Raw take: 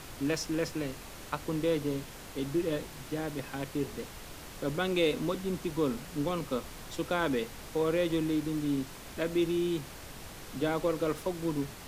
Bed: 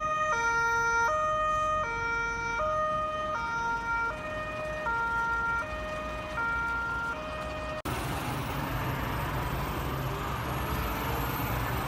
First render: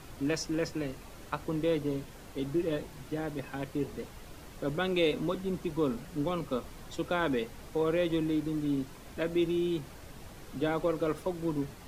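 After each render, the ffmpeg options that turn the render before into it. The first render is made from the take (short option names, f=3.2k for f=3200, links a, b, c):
-af "afftdn=nr=7:nf=-46"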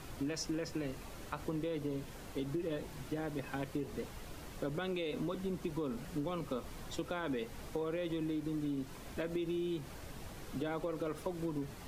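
-af "alimiter=limit=-23.5dB:level=0:latency=1:release=50,acompressor=threshold=-34dB:ratio=6"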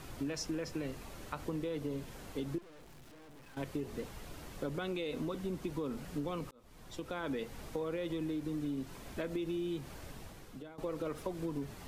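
-filter_complex "[0:a]asettb=1/sr,asplit=3[a][b][c];[a]atrim=end=2.584[d];[b]atrim=start=2.58:end=3.57,asetpts=PTS-STARTPTS,afade=t=in:d=0.004:c=qsin,afade=t=out:st=0.986:d=0.004:c=qsin,aeval=exprs='(tanh(562*val(0)+0.75)-tanh(0.75))/562':c=same[e];[c]atrim=start=3.566[f];[d][e]acrossfade=d=0.004:c1=hsin:c2=qsin[g];[g][f]acrossfade=d=0.004:c1=qsin:c2=hsin,asplit=3[h][i][j];[h]atrim=end=6.51,asetpts=PTS-STARTPTS,afade=t=out:st=6.506:d=0.004:c=hsin[k];[i]atrim=start=6.51:end=10.78,asetpts=PTS-STARTPTS,afade=t=in:d=0.73,afade=t=out:st=3.58:d=0.69:silence=0.11885[l];[j]atrim=start=10.78,asetpts=PTS-STARTPTS,afade=t=in:d=0.004:c=hsin:silence=0.11885[m];[k][l][m]concat=n=3:v=0:a=1"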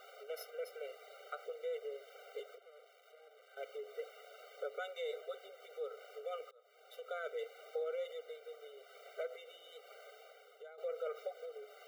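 -filter_complex "[0:a]acrossover=split=280|4400[a][b][c];[c]aeval=exprs='abs(val(0))':c=same[d];[a][b][d]amix=inputs=3:normalize=0,afftfilt=real='re*eq(mod(floor(b*sr/1024/390),2),1)':imag='im*eq(mod(floor(b*sr/1024/390),2),1)':win_size=1024:overlap=0.75"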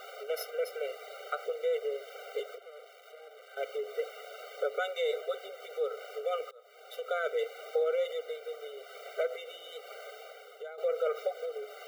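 -af "volume=10dB"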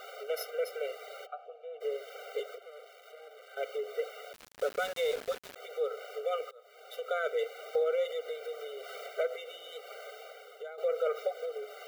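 -filter_complex "[0:a]asplit=3[a][b][c];[a]afade=t=out:st=1.25:d=0.02[d];[b]asplit=3[e][f][g];[e]bandpass=f=730:t=q:w=8,volume=0dB[h];[f]bandpass=f=1.09k:t=q:w=8,volume=-6dB[i];[g]bandpass=f=2.44k:t=q:w=8,volume=-9dB[j];[h][i][j]amix=inputs=3:normalize=0,afade=t=in:st=1.25:d=0.02,afade=t=out:st=1.8:d=0.02[k];[c]afade=t=in:st=1.8:d=0.02[l];[d][k][l]amix=inputs=3:normalize=0,asettb=1/sr,asplit=3[m][n][o];[m]atrim=end=4.334[p];[n]atrim=start=4.33:end=5.56,asetpts=PTS-STARTPTS,afade=t=in:d=0.004:c=qsin,afade=t=out:st=1.226:d=0.004:c=qsin,aeval=exprs='val(0)*gte(abs(val(0)),0.0119)':c=same[q];[o]atrim=start=5.556[r];[p][q]acrossfade=d=0.004:c1=hsin:c2=qsin[s];[s][r]acrossfade=d=0.004:c1=qsin:c2=hsin,asettb=1/sr,asplit=3[t][u][v];[t]atrim=end=7.754[w];[u]atrim=start=7.75:end=9.08,asetpts=PTS-STARTPTS,afade=t=in:d=0.004:c=qsin,afade=t=out:st=1.326:d=0.004:c=qsin,acompressor=mode=upward:threshold=-36dB:ratio=2.5:attack=3.2:release=140:knee=2.83:detection=peak[x];[v]atrim=start=9.076[y];[w][x]acrossfade=d=0.004:c1=hsin:c2=qsin[z];[z][y]acrossfade=d=0.004:c1=qsin:c2=hsin"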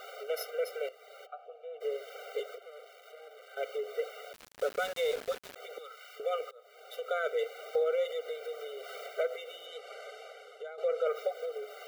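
-filter_complex "[0:a]asettb=1/sr,asplit=3[a][b][c];[a]atrim=end=5.784[d];[b]atrim=start=5.78:end=6.2,asetpts=PTS-STARTPTS,afade=t=in:d=0.004:c=qsin,afade=t=out:st=0.416:d=0.004:c=qsin,highpass=1.4k[e];[c]atrim=start=6.196[f];[d][e]acrossfade=d=0.004:c1=hsin:c2=qsin[g];[g][f]acrossfade=d=0.004:c1=qsin:c2=hsin,asettb=1/sr,asplit=3[h][i][j];[h]atrim=end=9.664[k];[i]atrim=start=9.66:end=11.07,asetpts=PTS-STARTPTS,afade=t=in:d=0.004:c=qsin,afade=t=out:st=1.406:d=0.004:c=qsin,lowpass=8.9k[l];[j]atrim=start=11.066[m];[k][l]acrossfade=d=0.004:c1=hsin:c2=qsin[n];[n][m]acrossfade=d=0.004:c1=qsin:c2=hsin,asplit=2[o][p];[o]atrim=end=0.89,asetpts=PTS-STARTPTS,afade=t=out:st=0.886:d=0.004:c=hsin:silence=0.211349[q];[p]atrim=start=0.89,asetpts=PTS-STARTPTS,afade=t=in:d=0.69:silence=0.211349[r];[q][r]concat=n=2:v=0:a=1"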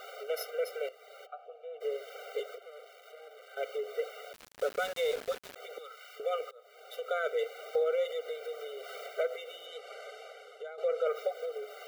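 -af anull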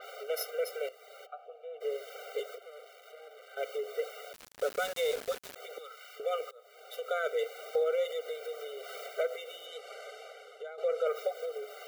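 -af "adynamicequalizer=threshold=0.00224:dfrequency=4800:dqfactor=0.7:tfrequency=4800:tqfactor=0.7:attack=5:release=100:ratio=0.375:range=2.5:mode=boostabove:tftype=highshelf"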